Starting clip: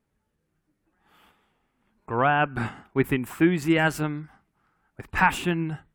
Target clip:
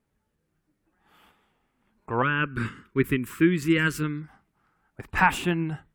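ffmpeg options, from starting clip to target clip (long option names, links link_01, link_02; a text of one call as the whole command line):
ffmpeg -i in.wav -filter_complex "[0:a]asettb=1/sr,asplit=3[link_01][link_02][link_03];[link_01]atrim=end=2.224[link_04];[link_02]atrim=start=2.22:end=4.22,asetpts=PTS-STARTPTS,afade=type=in:duration=0.004:curve=qsin,afade=type=out:start_time=1.996:duration=0.004:curve=qsin,asuperstop=centerf=730:order=4:qfactor=1.1[link_05];[link_03]atrim=start=4.216[link_06];[link_04][link_05]acrossfade=duration=0.004:curve1=hsin:curve2=qsin[link_07];[link_07][link_06]acrossfade=duration=0.004:curve1=qsin:curve2=hsin" out.wav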